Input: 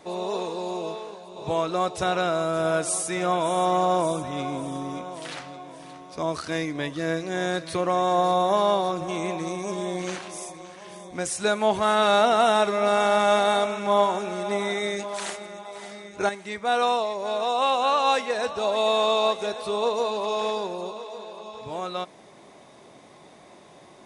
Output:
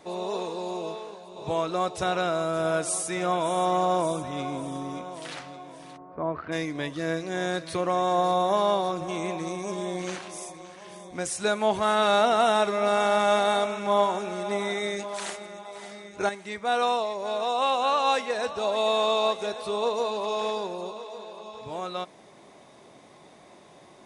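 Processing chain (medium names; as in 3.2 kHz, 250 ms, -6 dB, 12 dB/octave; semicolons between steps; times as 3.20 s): 5.96–6.51 s: low-pass 1.2 kHz -> 2.4 kHz 24 dB/octave; trim -2 dB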